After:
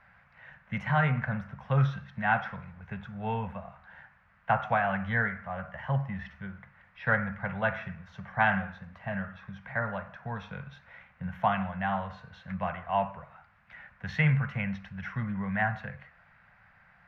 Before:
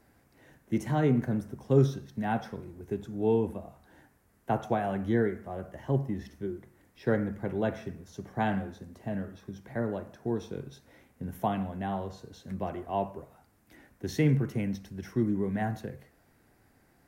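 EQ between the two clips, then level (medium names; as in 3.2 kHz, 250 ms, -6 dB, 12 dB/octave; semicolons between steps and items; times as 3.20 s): FFT filter 130 Hz 0 dB, 180 Hz +4 dB, 340 Hz -30 dB, 530 Hz -2 dB, 1.4 kHz +13 dB, 2.6 kHz +9 dB, 9.6 kHz -28 dB; 0.0 dB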